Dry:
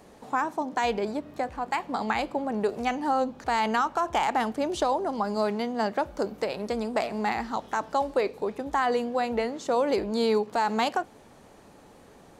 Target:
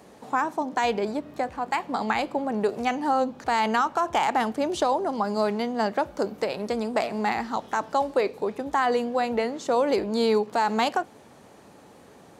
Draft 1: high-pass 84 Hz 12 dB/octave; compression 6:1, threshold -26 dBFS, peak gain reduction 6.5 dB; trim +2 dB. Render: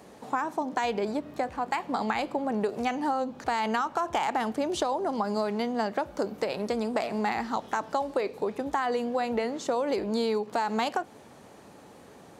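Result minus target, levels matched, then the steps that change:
compression: peak gain reduction +6.5 dB
remove: compression 6:1, threshold -26 dBFS, peak gain reduction 6.5 dB

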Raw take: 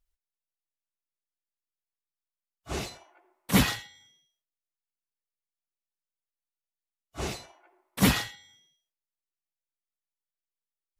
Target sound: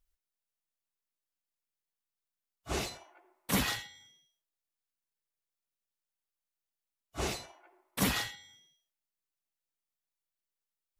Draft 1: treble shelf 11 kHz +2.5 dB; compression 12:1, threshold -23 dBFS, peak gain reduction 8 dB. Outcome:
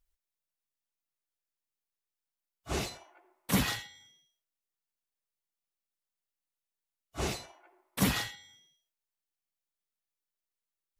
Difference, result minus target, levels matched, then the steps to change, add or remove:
125 Hz band +2.5 dB
add after compression: dynamic bell 130 Hz, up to -5 dB, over -39 dBFS, Q 0.75

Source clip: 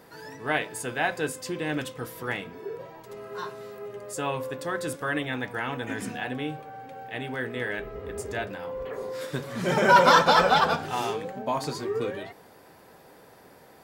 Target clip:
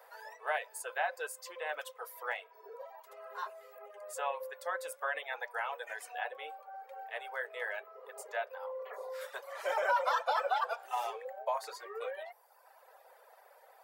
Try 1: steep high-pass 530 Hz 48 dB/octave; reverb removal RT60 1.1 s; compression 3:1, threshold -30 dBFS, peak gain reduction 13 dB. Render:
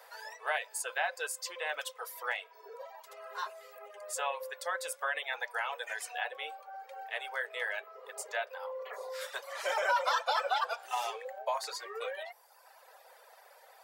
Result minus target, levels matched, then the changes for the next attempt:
4 kHz band +6.0 dB
add after steep high-pass: peaking EQ 5.2 kHz -10 dB 2.7 oct

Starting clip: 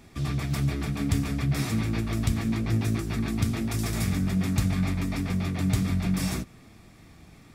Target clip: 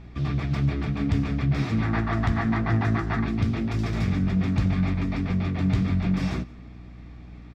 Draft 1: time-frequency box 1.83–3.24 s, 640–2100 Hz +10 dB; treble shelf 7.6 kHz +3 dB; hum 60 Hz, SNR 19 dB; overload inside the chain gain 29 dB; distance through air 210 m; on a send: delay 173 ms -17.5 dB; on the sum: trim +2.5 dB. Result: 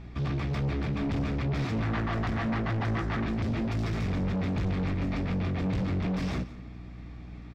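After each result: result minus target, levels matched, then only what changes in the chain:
overload inside the chain: distortion +17 dB; echo-to-direct +7 dB
change: overload inside the chain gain 17.5 dB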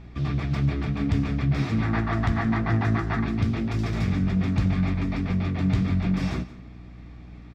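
echo-to-direct +7 dB
change: delay 173 ms -24.5 dB

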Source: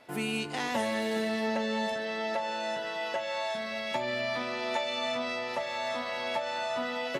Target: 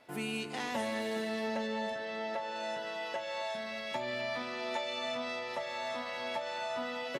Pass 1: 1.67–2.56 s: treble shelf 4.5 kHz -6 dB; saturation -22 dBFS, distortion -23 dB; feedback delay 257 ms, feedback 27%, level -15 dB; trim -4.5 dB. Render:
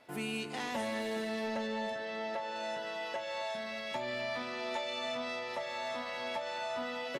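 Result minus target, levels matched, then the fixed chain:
saturation: distortion +15 dB
1.67–2.56 s: treble shelf 4.5 kHz -6 dB; saturation -13.5 dBFS, distortion -38 dB; feedback delay 257 ms, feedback 27%, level -15 dB; trim -4.5 dB

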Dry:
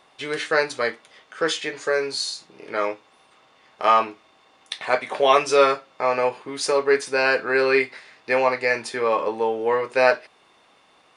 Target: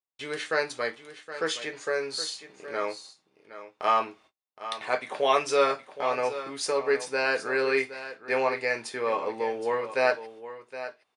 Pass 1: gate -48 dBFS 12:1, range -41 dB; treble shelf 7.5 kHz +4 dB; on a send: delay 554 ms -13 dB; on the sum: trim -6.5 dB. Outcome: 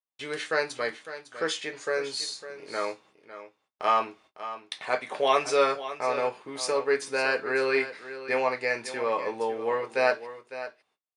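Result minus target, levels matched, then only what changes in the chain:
echo 214 ms early
change: delay 768 ms -13 dB

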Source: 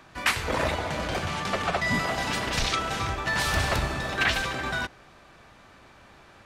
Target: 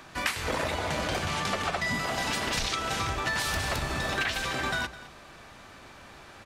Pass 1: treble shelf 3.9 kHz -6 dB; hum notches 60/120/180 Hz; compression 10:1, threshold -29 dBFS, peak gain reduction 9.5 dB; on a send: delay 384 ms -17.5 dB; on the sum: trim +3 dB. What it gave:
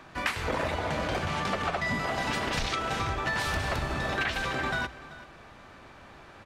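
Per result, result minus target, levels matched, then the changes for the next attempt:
echo 175 ms late; 8 kHz band -6.0 dB
change: delay 209 ms -17.5 dB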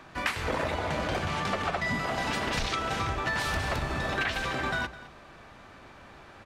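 8 kHz band -6.0 dB
change: treble shelf 3.9 kHz +5 dB

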